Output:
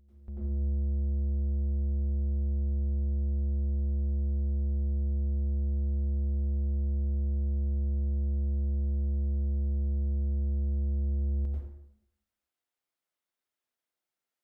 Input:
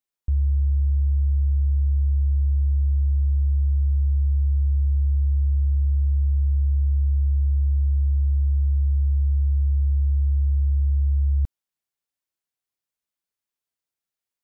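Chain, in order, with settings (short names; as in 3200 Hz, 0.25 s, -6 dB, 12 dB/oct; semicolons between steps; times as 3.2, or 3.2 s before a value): tone controls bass -6 dB, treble -5 dB; soft clip -32.5 dBFS, distortion -12 dB; reverse echo 0.404 s -22.5 dB; plate-style reverb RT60 0.81 s, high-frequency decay 0.65×, pre-delay 80 ms, DRR -6 dB; gain -4.5 dB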